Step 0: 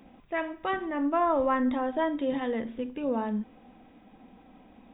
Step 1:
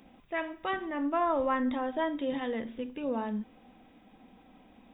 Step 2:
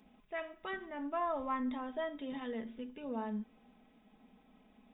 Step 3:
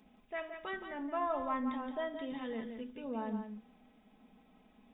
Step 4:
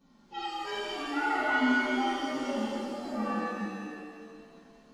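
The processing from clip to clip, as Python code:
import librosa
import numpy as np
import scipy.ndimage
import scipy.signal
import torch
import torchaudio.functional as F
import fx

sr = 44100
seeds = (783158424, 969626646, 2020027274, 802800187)

y1 = fx.high_shelf(x, sr, hz=3100.0, db=8.0)
y1 = F.gain(torch.from_numpy(y1), -3.5).numpy()
y2 = y1 + 0.55 * np.pad(y1, (int(4.7 * sr / 1000.0), 0))[:len(y1)]
y2 = F.gain(torch.from_numpy(y2), -8.5).numpy()
y3 = y2 + 10.0 ** (-8.0 / 20.0) * np.pad(y2, (int(171 * sr / 1000.0), 0))[:len(y2)]
y4 = fx.partial_stretch(y3, sr, pct=123)
y4 = fx.rev_shimmer(y4, sr, seeds[0], rt60_s=2.0, semitones=7, shimmer_db=-8, drr_db=-8.0)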